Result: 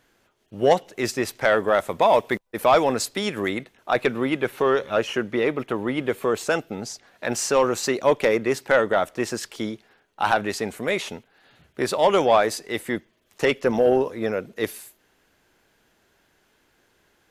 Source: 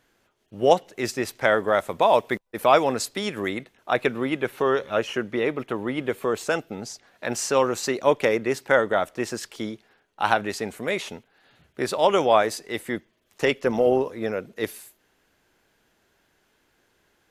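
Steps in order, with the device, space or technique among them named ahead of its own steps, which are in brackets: saturation between pre-emphasis and de-emphasis (treble shelf 2.7 kHz +8 dB; saturation -9.5 dBFS, distortion -17 dB; treble shelf 2.7 kHz -8 dB); trim +2.5 dB

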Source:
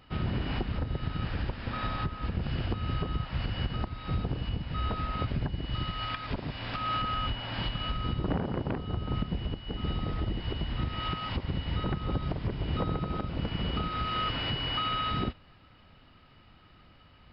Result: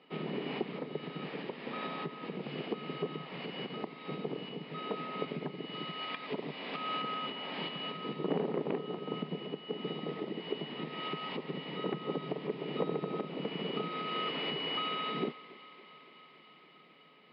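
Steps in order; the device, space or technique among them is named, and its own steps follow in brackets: elliptic high-pass 150 Hz; kitchen radio (cabinet simulation 180–4100 Hz, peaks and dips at 430 Hz +10 dB, 1.5 kHz -9 dB, 2.2 kHz +4 dB); thinning echo 281 ms, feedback 83%, level -17 dB; trim -2 dB

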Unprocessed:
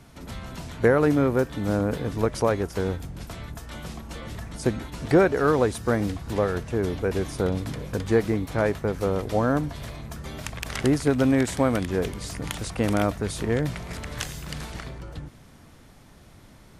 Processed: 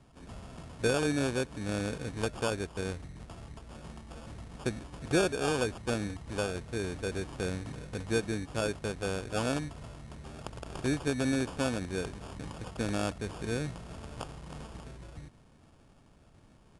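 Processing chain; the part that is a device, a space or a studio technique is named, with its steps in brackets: crushed at another speed (playback speed 2×; sample-and-hold 11×; playback speed 0.5×); trim -9 dB

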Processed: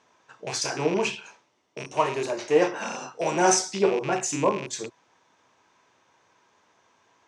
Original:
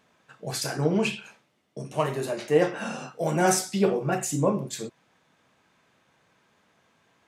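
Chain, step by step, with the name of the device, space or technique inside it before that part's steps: car door speaker with a rattle (rattle on loud lows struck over -36 dBFS, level -26 dBFS; cabinet simulation 85–8100 Hz, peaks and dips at 150 Hz -9 dB, 210 Hz -7 dB, 380 Hz +3 dB, 960 Hz +8 dB, 5.9 kHz +8 dB)

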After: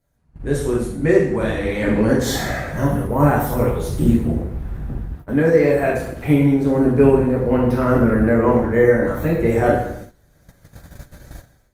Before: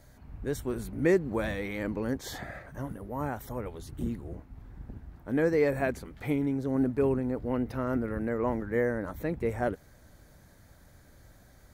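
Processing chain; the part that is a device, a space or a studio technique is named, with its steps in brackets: speakerphone in a meeting room (reverberation RT60 0.75 s, pre-delay 6 ms, DRR -4 dB; level rider gain up to 15 dB; gate -32 dBFS, range -17 dB; trim -1 dB; Opus 32 kbps 48 kHz)

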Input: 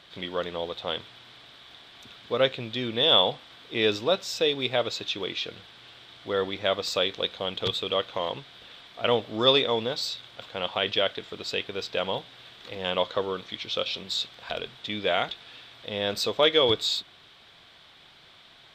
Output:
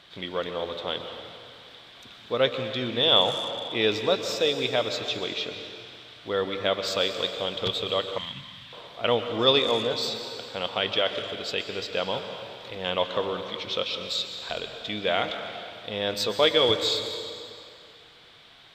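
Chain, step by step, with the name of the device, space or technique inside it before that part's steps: saturated reverb return (on a send at -6 dB: reverberation RT60 2.2 s, pre-delay 116 ms + saturation -18 dBFS, distortion -18 dB); 8.18–8.73 s: on the sum: FFT filter 230 Hz 0 dB, 450 Hz -29 dB, 1.8 kHz 0 dB

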